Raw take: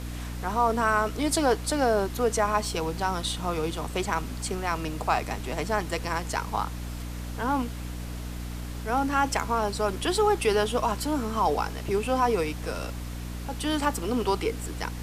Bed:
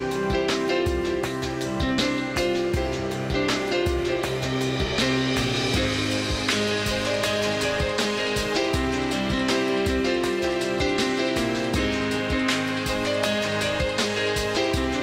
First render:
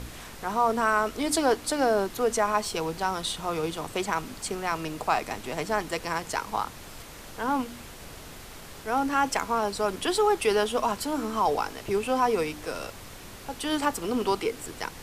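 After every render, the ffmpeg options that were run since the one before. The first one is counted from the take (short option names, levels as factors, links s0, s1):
-af "bandreject=f=60:t=h:w=4,bandreject=f=120:t=h:w=4,bandreject=f=180:t=h:w=4,bandreject=f=240:t=h:w=4,bandreject=f=300:t=h:w=4"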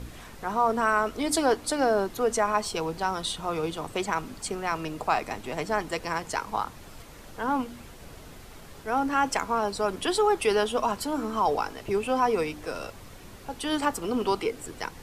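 -af "afftdn=nr=6:nf=-44"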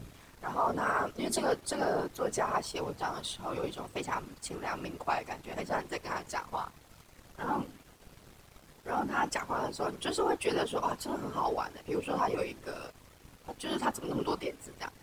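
-af "afftfilt=real='hypot(re,im)*cos(2*PI*random(0))':imag='hypot(re,im)*sin(2*PI*random(1))':win_size=512:overlap=0.75,aeval=exprs='sgn(val(0))*max(abs(val(0))-0.00141,0)':c=same"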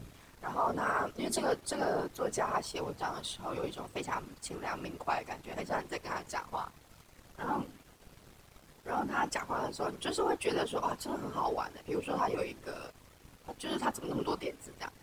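-af "volume=0.841"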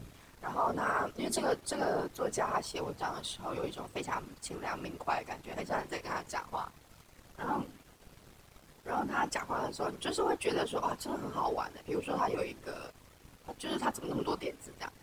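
-filter_complex "[0:a]asettb=1/sr,asplit=3[s0][s1][s2];[s0]atrim=end=5.754[s3];[s1]atrim=start=5.75:end=6.21,asetpts=PTS-STARTPTS,afade=t=in:d=0.004:c=qsin,afade=t=out:st=0.456:d=0.004:c=qsin,asplit=2[s4][s5];[s5]adelay=33,volume=0.376[s6];[s4][s6]amix=inputs=2:normalize=0,atrim=end_sample=20286[s7];[s2]atrim=start=6.206[s8];[s3][s7]acrossfade=d=0.004:c1=hsin:c2=qsin[s9];[s9][s8]acrossfade=d=0.004:c1=qsin:c2=hsin"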